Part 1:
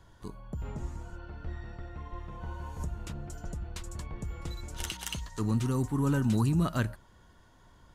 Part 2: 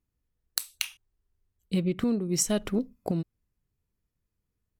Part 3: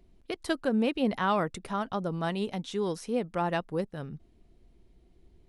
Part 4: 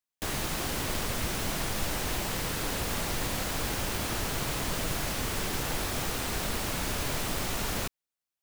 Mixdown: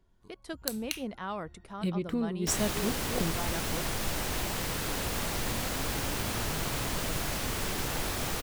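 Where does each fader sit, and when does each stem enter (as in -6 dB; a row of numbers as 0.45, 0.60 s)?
-17.5, -4.5, -10.0, -1.0 dB; 0.00, 0.10, 0.00, 2.25 s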